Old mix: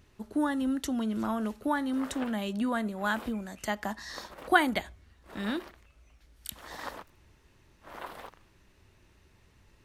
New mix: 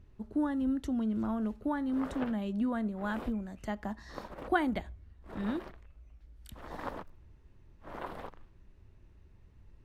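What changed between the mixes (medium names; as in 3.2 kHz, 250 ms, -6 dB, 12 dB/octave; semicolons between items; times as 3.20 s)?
speech -7.0 dB; master: add tilt EQ -3 dB/octave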